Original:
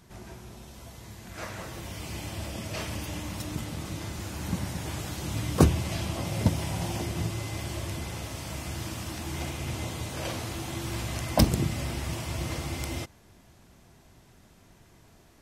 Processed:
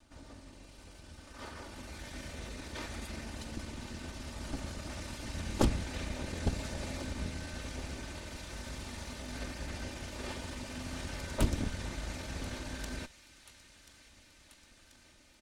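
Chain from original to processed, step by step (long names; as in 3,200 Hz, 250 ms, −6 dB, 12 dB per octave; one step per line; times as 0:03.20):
lower of the sound and its delayed copy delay 2.5 ms
pitch shifter −5 semitones
on a send: delay with a high-pass on its return 1,035 ms, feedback 71%, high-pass 1,800 Hz, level −14.5 dB
on the sum: highs frequency-modulated by the lows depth 0.57 ms
level −5 dB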